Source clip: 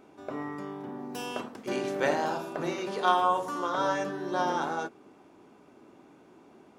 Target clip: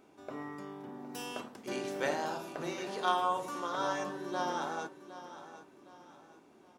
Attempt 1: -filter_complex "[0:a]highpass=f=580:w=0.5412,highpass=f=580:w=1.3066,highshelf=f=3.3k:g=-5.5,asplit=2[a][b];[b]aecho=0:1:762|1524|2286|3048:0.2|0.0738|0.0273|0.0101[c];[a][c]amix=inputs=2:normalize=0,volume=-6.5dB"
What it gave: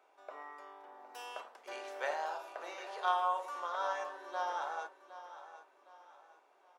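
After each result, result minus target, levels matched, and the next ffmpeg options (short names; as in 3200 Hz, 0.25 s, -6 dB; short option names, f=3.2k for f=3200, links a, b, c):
8000 Hz band -7.0 dB; 500 Hz band -2.5 dB
-filter_complex "[0:a]highpass=f=580:w=0.5412,highpass=f=580:w=1.3066,highshelf=f=3.3k:g=6,asplit=2[a][b];[b]aecho=0:1:762|1524|2286|3048:0.2|0.0738|0.0273|0.0101[c];[a][c]amix=inputs=2:normalize=0,volume=-6.5dB"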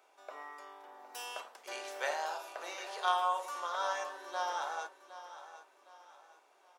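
500 Hz band -3.5 dB
-filter_complex "[0:a]highshelf=f=3.3k:g=6,asplit=2[a][b];[b]aecho=0:1:762|1524|2286|3048:0.2|0.0738|0.0273|0.0101[c];[a][c]amix=inputs=2:normalize=0,volume=-6.5dB"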